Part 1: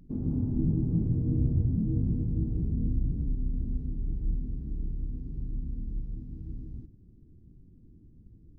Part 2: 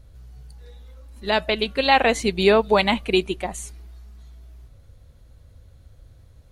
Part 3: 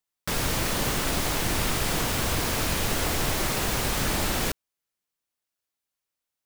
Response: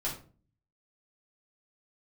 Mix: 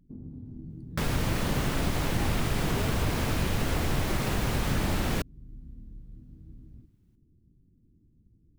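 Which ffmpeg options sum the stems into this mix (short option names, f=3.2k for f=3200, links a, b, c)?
-filter_complex "[0:a]acompressor=threshold=-30dB:ratio=6,volume=-10.5dB[a];[1:a]highshelf=f=4k:g=-9.5,adelay=300,volume=-18.5dB[b];[2:a]bass=f=250:g=5,treble=f=4k:g=-6,adelay=700,volume=3dB[c];[a][b][c]amix=inputs=3:normalize=0,equalizer=f=170:t=o:w=2.9:g=3,acompressor=threshold=-37dB:ratio=1.5"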